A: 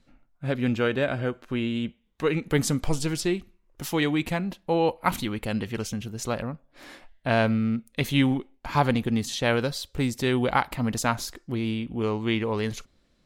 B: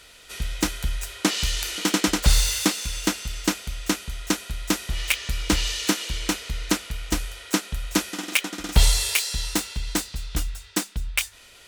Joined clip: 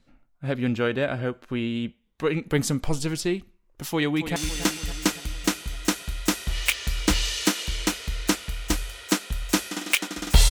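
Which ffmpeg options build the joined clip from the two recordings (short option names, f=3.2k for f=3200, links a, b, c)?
-filter_complex "[0:a]apad=whole_dur=10.5,atrim=end=10.5,atrim=end=4.362[a];[1:a]atrim=start=2.778:end=8.92[b];[a][b]acrossfade=d=0.004:c1=hsin:c2=hsin,asplit=2[c][d];[d]afade=t=in:st=3.88:d=0.01,afade=t=out:st=4.36:d=0.01,aecho=0:1:280|560|840|1120|1400|1680|1960:0.298538|0.179123|0.107474|0.0644843|0.0386906|0.0232143|0.0139286[e];[c][e]amix=inputs=2:normalize=0"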